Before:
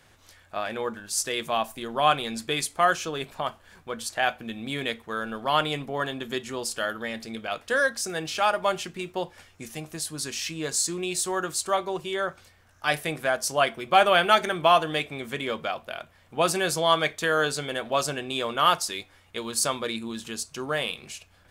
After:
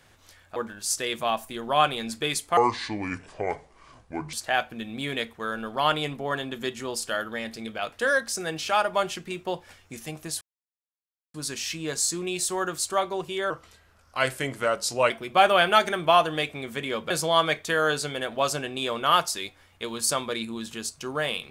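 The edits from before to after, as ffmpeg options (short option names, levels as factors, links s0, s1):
-filter_complex "[0:a]asplit=8[s0][s1][s2][s3][s4][s5][s6][s7];[s0]atrim=end=0.562[s8];[s1]atrim=start=0.828:end=2.844[s9];[s2]atrim=start=2.84:end=4.02,asetpts=PTS-STARTPTS,asetrate=29547,aresample=44100[s10];[s3]atrim=start=4.016:end=10.1,asetpts=PTS-STARTPTS,afade=t=out:st=6.08:d=0.004:c=hsin,apad=pad_dur=0.93[s11];[s4]atrim=start=10.1:end=12.264,asetpts=PTS-STARTPTS,afade=t=in:d=0.004:c=hsin[s12];[s5]atrim=start=12.26:end=13.67,asetpts=PTS-STARTPTS,asetrate=38808,aresample=44100,atrim=end_sample=70660,asetpts=PTS-STARTPTS[s13];[s6]atrim=start=13.666:end=15.672[s14];[s7]atrim=start=16.638[s15];[s8][s9]acrossfade=d=0.004:c1=hsin:c2=hsin[s16];[s16][s10]acrossfade=d=0.004:c1=hsin:c2=hsin[s17];[s11][s12]concat=n=2:v=0:a=1[s18];[s17][s18]acrossfade=d=0.004:c1=hsin:c2=hsin[s19];[s19][s13]acrossfade=d=0.004:c1=hsin:c2=hsin[s20];[s20][s14]acrossfade=d=0.004:c1=hsin:c2=hsin[s21];[s21][s15]acrossfade=d=0.004:c1=hsin:c2=hsin"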